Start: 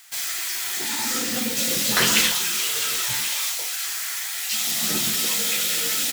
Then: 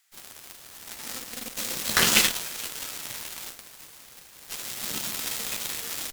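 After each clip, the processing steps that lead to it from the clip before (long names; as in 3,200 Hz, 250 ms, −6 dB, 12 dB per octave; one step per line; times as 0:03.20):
harmonic generator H 4 −19 dB, 5 −25 dB, 7 −14 dB, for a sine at −4.5 dBFS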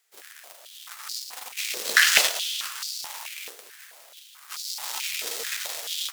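four-comb reverb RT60 3.5 s, combs from 27 ms, DRR 13 dB
dynamic equaliser 5,000 Hz, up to +4 dB, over −37 dBFS, Q 0.99
high-pass on a step sequencer 4.6 Hz 440–4,600 Hz
level −3 dB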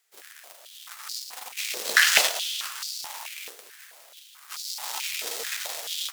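dynamic equaliser 760 Hz, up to +4 dB, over −46 dBFS, Q 1.6
level −1 dB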